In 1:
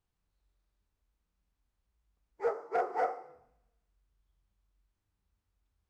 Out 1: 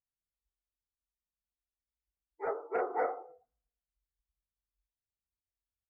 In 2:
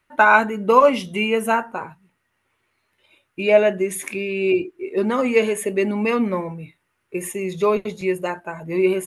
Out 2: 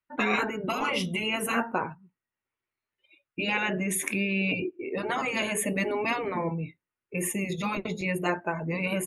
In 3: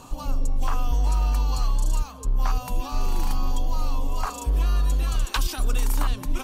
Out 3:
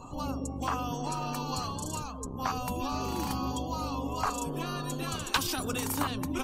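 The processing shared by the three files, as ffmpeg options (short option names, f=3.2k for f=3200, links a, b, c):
-af "afftfilt=real='re*lt(hypot(re,im),0.355)':imag='im*lt(hypot(re,im),0.355)':win_size=1024:overlap=0.75,afftdn=nr=21:nf=-51,adynamicequalizer=threshold=0.00447:dfrequency=260:dqfactor=0.94:tfrequency=260:tqfactor=0.94:attack=5:release=100:ratio=0.375:range=2:mode=boostabove:tftype=bell"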